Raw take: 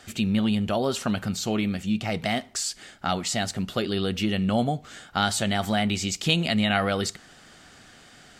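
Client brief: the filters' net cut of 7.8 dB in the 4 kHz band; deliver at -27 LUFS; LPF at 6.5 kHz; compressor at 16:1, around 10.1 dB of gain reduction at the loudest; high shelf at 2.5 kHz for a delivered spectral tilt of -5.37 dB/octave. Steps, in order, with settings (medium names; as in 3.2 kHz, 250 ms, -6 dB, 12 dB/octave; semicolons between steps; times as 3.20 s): low-pass 6.5 kHz; treble shelf 2.5 kHz -6 dB; peaking EQ 4 kHz -5 dB; compression 16:1, threshold -30 dBFS; trim +8.5 dB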